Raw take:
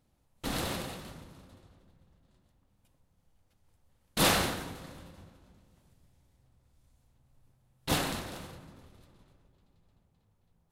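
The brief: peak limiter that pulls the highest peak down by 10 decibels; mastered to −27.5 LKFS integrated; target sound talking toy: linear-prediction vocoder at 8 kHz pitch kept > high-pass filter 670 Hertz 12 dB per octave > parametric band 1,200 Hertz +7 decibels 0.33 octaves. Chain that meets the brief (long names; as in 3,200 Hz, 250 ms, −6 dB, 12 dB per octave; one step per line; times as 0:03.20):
brickwall limiter −23.5 dBFS
linear-prediction vocoder at 8 kHz pitch kept
high-pass filter 670 Hz 12 dB per octave
parametric band 1,200 Hz +7 dB 0.33 octaves
level +13 dB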